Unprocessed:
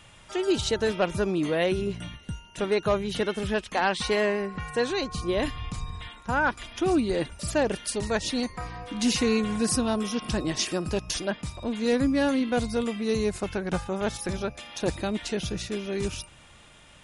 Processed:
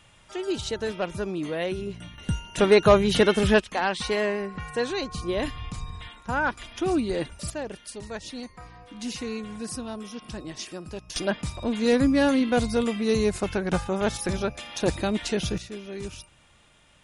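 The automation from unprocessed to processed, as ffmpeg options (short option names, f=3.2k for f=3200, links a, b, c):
-af "asetnsamples=n=441:p=0,asendcmd='2.18 volume volume 8dB;3.6 volume volume -1dB;7.5 volume volume -9dB;11.16 volume volume 3dB;15.58 volume volume -6dB',volume=-4dB"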